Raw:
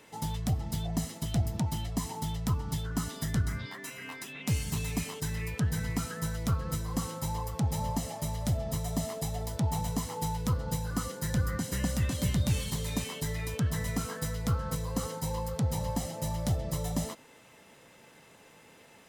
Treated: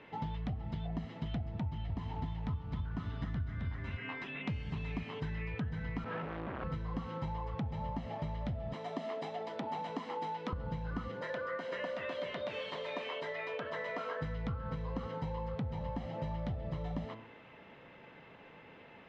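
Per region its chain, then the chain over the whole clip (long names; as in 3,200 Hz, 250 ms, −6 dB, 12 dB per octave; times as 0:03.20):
0:01.63–0:03.97: parametric band 79 Hz +9 dB 0.94 octaves + feedback echo at a low word length 265 ms, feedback 35%, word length 8 bits, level −4.5 dB
0:06.04–0:06.64: sign of each sample alone + resonant band-pass 620 Hz, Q 0.65 + flutter between parallel walls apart 6.1 metres, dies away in 0.21 s
0:08.73–0:10.53: high-pass filter 250 Hz 24 dB per octave + high-shelf EQ 7,100 Hz +7.5 dB
0:11.21–0:14.21: high-pass with resonance 580 Hz, resonance Q 2.3 + notch filter 790 Hz, Q 6
whole clip: low-pass filter 3,000 Hz 24 dB per octave; hum removal 111.5 Hz, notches 29; downward compressor, threshold −37 dBFS; level +2 dB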